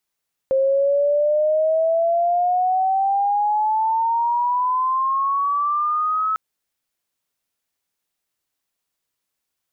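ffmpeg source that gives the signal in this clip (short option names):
-f lavfi -i "aevalsrc='pow(10,(-14.5-3.5*t/5.85)/20)*sin(2*PI*530*5.85/log(1300/530)*(exp(log(1300/530)*t/5.85)-1))':d=5.85:s=44100"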